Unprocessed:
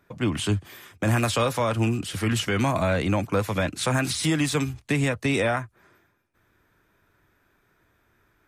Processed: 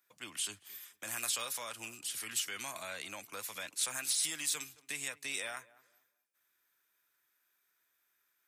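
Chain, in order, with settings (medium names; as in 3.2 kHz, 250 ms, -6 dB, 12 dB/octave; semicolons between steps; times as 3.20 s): differentiator; on a send: tape echo 222 ms, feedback 28%, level -18 dB, low-pass 1 kHz; on the sum: trim -1.5 dB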